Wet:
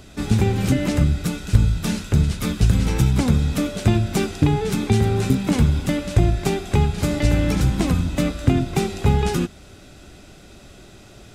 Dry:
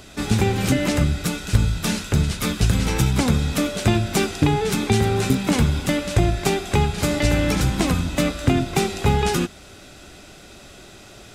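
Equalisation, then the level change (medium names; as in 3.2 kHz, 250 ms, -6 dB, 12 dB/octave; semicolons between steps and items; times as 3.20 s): bass shelf 350 Hz +7.5 dB; -4.5 dB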